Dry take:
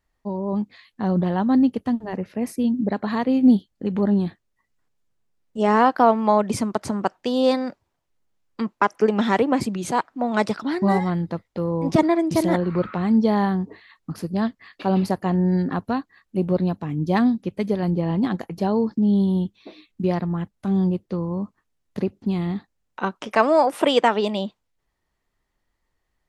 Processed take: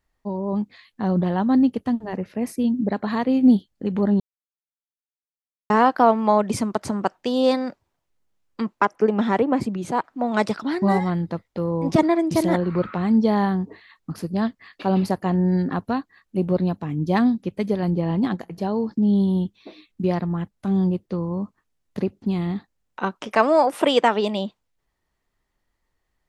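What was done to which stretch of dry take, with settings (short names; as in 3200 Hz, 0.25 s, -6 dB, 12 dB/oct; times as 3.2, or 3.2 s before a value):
4.2–5.7 mute
8.85–10.04 high shelf 2200 Hz -9 dB
18.34–18.89 resonator 59 Hz, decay 1.8 s, mix 30%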